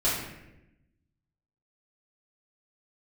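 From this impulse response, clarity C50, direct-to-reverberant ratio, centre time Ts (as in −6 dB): 1.5 dB, −9.5 dB, 61 ms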